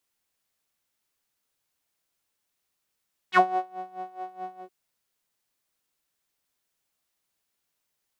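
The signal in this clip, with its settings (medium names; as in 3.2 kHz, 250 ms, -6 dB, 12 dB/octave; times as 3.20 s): synth patch with tremolo F#4, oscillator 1 saw, oscillator 2 triangle, interval -12 st, oscillator 2 level -8 dB, filter bandpass, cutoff 470 Hz, Q 4.6, filter envelope 3 oct, filter decay 0.07 s, filter sustain 20%, attack 55 ms, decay 0.25 s, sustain -21.5 dB, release 0.09 s, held 1.28 s, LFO 4.7 Hz, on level 17.5 dB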